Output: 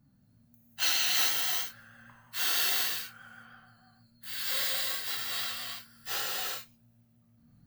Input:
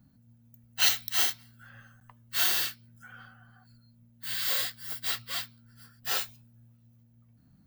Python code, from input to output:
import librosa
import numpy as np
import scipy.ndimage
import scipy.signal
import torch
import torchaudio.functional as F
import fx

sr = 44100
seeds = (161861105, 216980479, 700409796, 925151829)

y = fx.rev_gated(x, sr, seeds[0], gate_ms=420, shape='flat', drr_db=-6.0)
y = fx.vibrato(y, sr, rate_hz=6.3, depth_cents=32.0)
y = y * librosa.db_to_amplitude(-6.0)